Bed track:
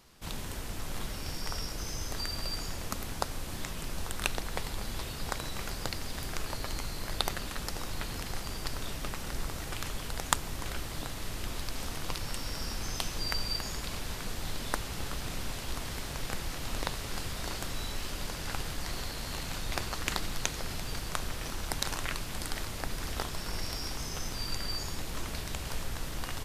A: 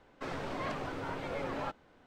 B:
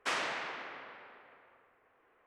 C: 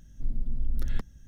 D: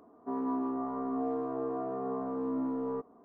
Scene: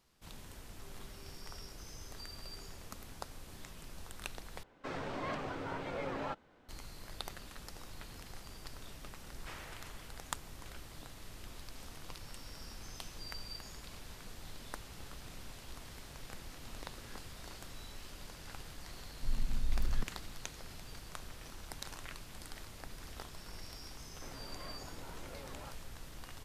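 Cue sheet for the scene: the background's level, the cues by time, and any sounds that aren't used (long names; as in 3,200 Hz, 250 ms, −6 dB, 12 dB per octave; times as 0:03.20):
bed track −12.5 dB
0:00.54: mix in D −9.5 dB + tuned comb filter 400 Hz, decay 0.54 s, mix 100%
0:04.63: overwrite with A −2 dB
0:09.40: mix in B −16 dB
0:16.16: mix in C −7 dB + flat-topped band-pass 810 Hz, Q 0.51
0:19.03: mix in C −4.5 dB
0:24.00: mix in A −13.5 dB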